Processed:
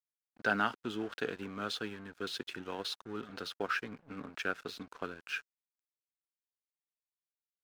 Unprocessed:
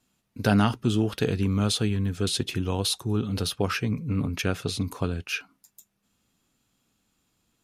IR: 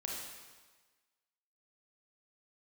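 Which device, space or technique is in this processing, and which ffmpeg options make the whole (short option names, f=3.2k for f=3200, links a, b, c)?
pocket radio on a weak battery: -af "highpass=320,lowpass=4.5k,aeval=exprs='sgn(val(0))*max(abs(val(0))-0.00596,0)':c=same,equalizer=f=1.5k:t=o:w=0.53:g=10,volume=-8dB"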